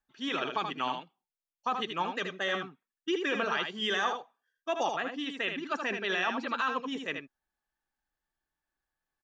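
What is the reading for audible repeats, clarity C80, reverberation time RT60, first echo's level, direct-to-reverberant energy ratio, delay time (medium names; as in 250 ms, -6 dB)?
1, no reverb, no reverb, -6.0 dB, no reverb, 78 ms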